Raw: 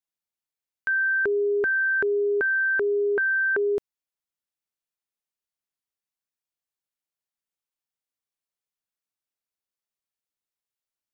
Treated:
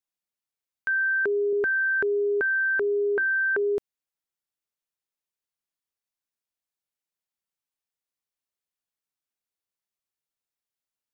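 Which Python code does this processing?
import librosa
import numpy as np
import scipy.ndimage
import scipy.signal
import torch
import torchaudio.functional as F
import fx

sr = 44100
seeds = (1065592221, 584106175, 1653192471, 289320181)

y = fx.highpass(x, sr, hz=160.0, slope=12, at=(1.01, 1.53))
y = fx.hum_notches(y, sr, base_hz=60, count=6, at=(2.61, 3.63))
y = F.gain(torch.from_numpy(y), -1.0).numpy()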